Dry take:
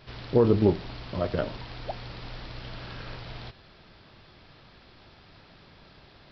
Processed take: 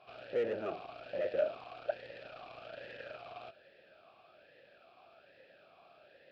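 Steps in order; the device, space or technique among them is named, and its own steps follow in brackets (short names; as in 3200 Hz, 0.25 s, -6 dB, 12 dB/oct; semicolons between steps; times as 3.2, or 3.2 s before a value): talk box (tube stage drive 31 dB, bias 0.8; vowel sweep a-e 1.2 Hz); gain +10.5 dB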